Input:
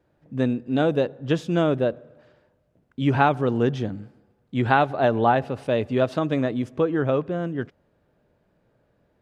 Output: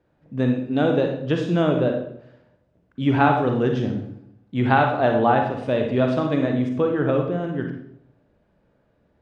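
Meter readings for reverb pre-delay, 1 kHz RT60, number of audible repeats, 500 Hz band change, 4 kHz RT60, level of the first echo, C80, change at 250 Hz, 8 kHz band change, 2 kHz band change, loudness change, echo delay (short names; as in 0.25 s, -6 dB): 35 ms, 0.65 s, none, +1.5 dB, 0.55 s, none, 8.0 dB, +2.5 dB, n/a, +1.5 dB, +1.5 dB, none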